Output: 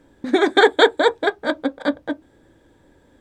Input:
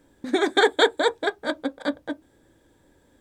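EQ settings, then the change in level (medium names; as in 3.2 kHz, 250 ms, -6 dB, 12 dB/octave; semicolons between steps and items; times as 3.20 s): treble shelf 6.2 kHz -11 dB; +5.5 dB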